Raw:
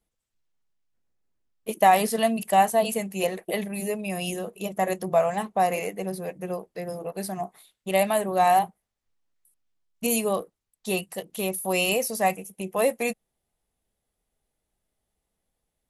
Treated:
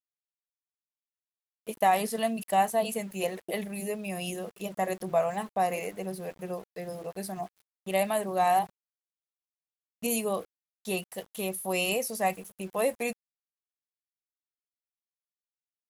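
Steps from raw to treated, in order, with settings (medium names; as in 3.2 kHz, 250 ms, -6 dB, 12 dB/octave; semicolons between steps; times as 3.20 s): level rider gain up to 4 dB; small samples zeroed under -40 dBFS; trim -8.5 dB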